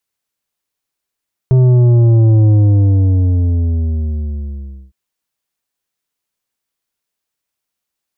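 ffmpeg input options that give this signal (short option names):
-f lavfi -i "aevalsrc='0.447*clip((3.41-t)/2.43,0,1)*tanh(2.66*sin(2*PI*130*3.41/log(65/130)*(exp(log(65/130)*t/3.41)-1)))/tanh(2.66)':d=3.41:s=44100"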